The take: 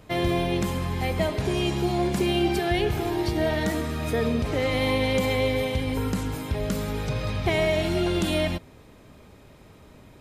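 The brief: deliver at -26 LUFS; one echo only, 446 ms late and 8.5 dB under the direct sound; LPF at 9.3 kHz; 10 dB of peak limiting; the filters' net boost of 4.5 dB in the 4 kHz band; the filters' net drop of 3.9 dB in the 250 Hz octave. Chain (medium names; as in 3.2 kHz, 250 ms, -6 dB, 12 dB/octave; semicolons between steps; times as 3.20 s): low-pass 9.3 kHz; peaking EQ 250 Hz -6 dB; peaking EQ 4 kHz +6 dB; peak limiter -21.5 dBFS; delay 446 ms -8.5 dB; trim +3.5 dB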